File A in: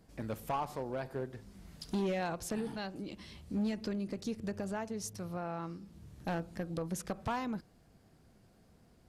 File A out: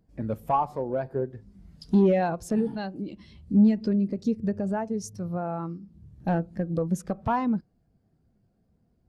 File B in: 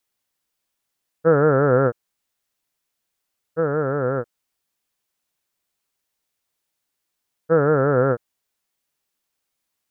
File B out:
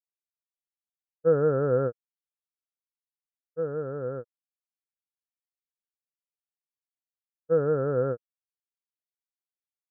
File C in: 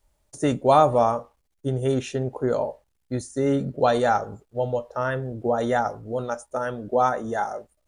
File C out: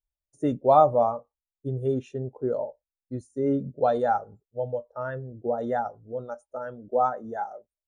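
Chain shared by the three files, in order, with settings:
every bin expanded away from the loudest bin 1.5 to 1
loudness normalisation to −27 LKFS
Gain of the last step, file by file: +16.5, −7.0, −1.0 decibels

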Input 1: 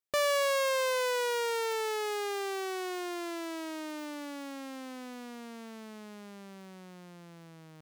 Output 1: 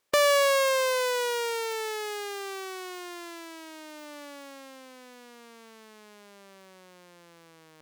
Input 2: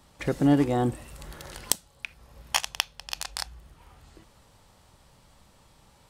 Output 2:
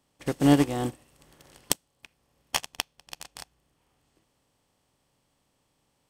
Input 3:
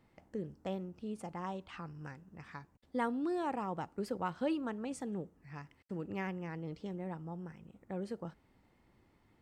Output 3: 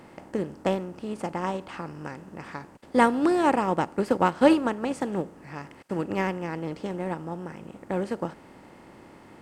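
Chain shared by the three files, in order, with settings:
compressor on every frequency bin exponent 0.6
expander for the loud parts 2.5 to 1, over −38 dBFS
loudness normalisation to −27 LKFS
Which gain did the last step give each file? +7.0, +2.0, +16.5 decibels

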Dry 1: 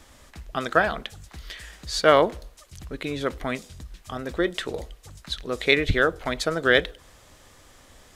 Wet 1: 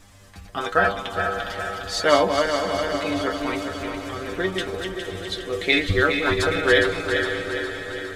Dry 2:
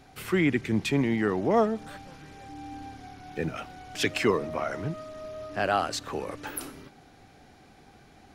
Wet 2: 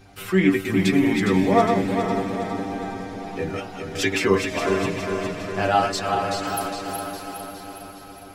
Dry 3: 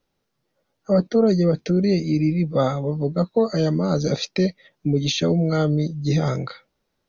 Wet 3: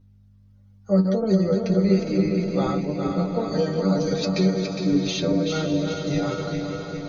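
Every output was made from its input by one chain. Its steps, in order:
feedback delay that plays each chunk backwards 205 ms, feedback 74%, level −5 dB
mains hum 50 Hz, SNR 29 dB
stiff-string resonator 95 Hz, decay 0.21 s, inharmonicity 0.002
on a send: feedback delay with all-pass diffusion 570 ms, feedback 43%, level −9.5 dB
on the sum: loudness normalisation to −23 LKFS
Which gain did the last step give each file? +8.0, +11.5, +4.0 decibels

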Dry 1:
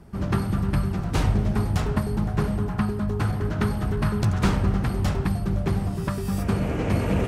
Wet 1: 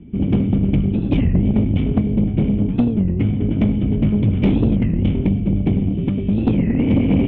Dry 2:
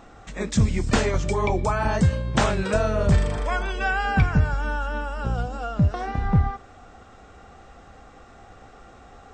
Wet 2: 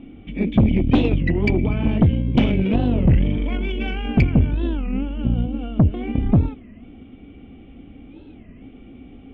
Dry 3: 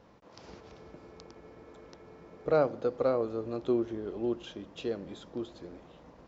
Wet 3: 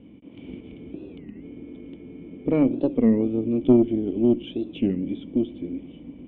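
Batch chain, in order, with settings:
formant resonators in series i
tube saturation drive 28 dB, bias 0.45
wow of a warped record 33 1/3 rpm, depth 250 cents
normalise the peak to −6 dBFS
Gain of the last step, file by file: +19.5, +19.0, +23.0 decibels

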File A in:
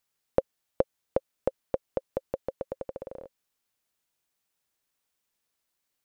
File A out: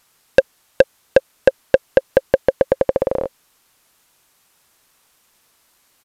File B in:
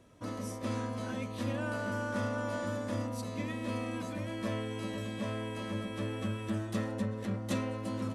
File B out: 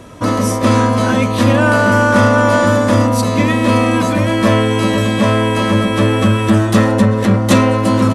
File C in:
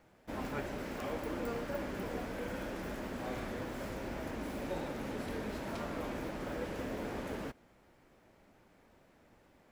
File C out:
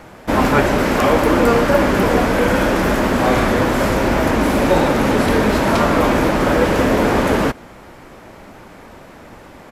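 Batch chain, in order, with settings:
parametric band 1,100 Hz +3.5 dB 0.84 octaves
soft clipping −23.5 dBFS
downsampling to 32,000 Hz
normalise the peak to −1.5 dBFS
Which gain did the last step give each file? +22.0, +23.5, +24.5 decibels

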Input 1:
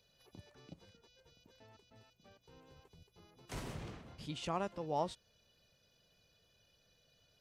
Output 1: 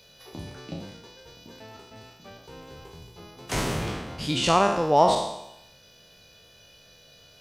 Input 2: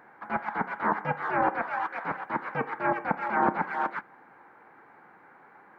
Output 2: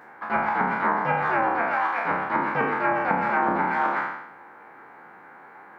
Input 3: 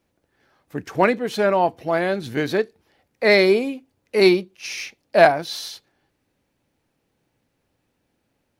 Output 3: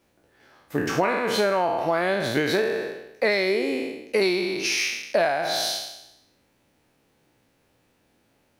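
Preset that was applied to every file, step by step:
peak hold with a decay on every bin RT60 0.85 s
low-shelf EQ 250 Hz −4.5 dB
downward compressor 10 to 1, threshold −24 dBFS
loudness normalisation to −24 LKFS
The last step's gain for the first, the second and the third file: +16.5, +5.5, +5.0 decibels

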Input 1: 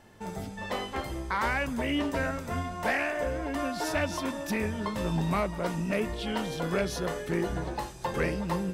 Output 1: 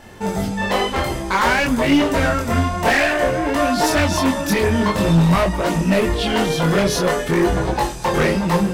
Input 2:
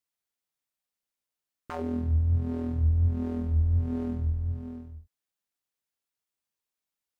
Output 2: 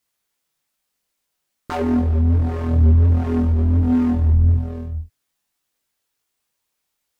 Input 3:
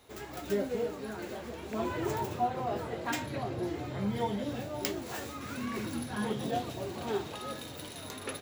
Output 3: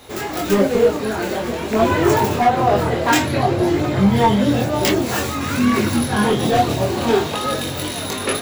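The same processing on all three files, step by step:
hard clipping −27.5 dBFS
multi-voice chorus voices 2, 0.52 Hz, delay 23 ms, depth 3.1 ms
loudness normalisation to −18 LKFS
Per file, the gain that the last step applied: +18.0, +16.0, +21.0 decibels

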